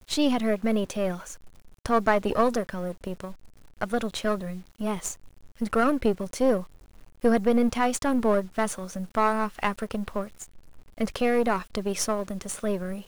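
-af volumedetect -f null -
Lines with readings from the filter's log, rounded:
mean_volume: -26.7 dB
max_volume: -7.4 dB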